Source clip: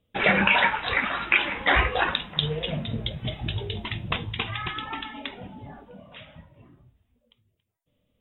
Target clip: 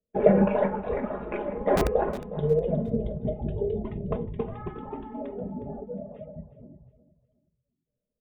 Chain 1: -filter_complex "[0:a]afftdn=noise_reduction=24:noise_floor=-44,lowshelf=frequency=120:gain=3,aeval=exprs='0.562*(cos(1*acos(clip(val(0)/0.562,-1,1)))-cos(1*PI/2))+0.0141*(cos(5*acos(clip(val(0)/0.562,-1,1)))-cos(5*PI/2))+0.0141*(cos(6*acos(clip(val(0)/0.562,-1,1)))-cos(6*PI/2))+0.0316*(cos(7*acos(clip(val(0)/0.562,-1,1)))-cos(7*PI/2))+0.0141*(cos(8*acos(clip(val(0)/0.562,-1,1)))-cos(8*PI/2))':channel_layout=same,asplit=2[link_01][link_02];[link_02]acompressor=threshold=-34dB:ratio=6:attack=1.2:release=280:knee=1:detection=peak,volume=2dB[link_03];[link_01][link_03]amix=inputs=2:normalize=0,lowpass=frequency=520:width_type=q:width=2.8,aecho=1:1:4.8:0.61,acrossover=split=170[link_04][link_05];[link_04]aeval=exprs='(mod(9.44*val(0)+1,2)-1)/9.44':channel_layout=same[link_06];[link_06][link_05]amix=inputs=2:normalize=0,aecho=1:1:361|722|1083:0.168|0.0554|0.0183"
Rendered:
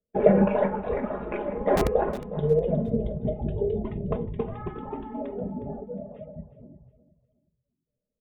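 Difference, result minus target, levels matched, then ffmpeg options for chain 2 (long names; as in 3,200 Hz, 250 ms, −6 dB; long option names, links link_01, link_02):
downward compressor: peak gain reduction −6 dB
-filter_complex "[0:a]afftdn=noise_reduction=24:noise_floor=-44,lowshelf=frequency=120:gain=3,aeval=exprs='0.562*(cos(1*acos(clip(val(0)/0.562,-1,1)))-cos(1*PI/2))+0.0141*(cos(5*acos(clip(val(0)/0.562,-1,1)))-cos(5*PI/2))+0.0141*(cos(6*acos(clip(val(0)/0.562,-1,1)))-cos(6*PI/2))+0.0316*(cos(7*acos(clip(val(0)/0.562,-1,1)))-cos(7*PI/2))+0.0141*(cos(8*acos(clip(val(0)/0.562,-1,1)))-cos(8*PI/2))':channel_layout=same,asplit=2[link_01][link_02];[link_02]acompressor=threshold=-41dB:ratio=6:attack=1.2:release=280:knee=1:detection=peak,volume=2dB[link_03];[link_01][link_03]amix=inputs=2:normalize=0,lowpass=frequency=520:width_type=q:width=2.8,aecho=1:1:4.8:0.61,acrossover=split=170[link_04][link_05];[link_04]aeval=exprs='(mod(9.44*val(0)+1,2)-1)/9.44':channel_layout=same[link_06];[link_06][link_05]amix=inputs=2:normalize=0,aecho=1:1:361|722|1083:0.168|0.0554|0.0183"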